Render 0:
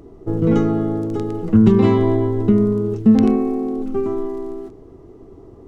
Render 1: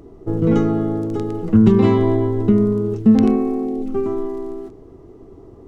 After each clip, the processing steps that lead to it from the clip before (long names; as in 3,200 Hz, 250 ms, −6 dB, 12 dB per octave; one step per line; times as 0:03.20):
gain on a spectral selection 0:03.65–0:03.88, 810–1,800 Hz −8 dB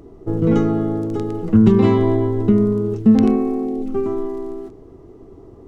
no processing that can be heard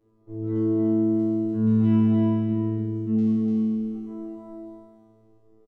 tuned comb filter 110 Hz, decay 2 s, mix 100%
on a send: single-tap delay 295 ms −3.5 dB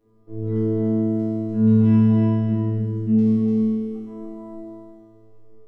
convolution reverb RT60 1.1 s, pre-delay 4 ms, DRR 2.5 dB
level +1.5 dB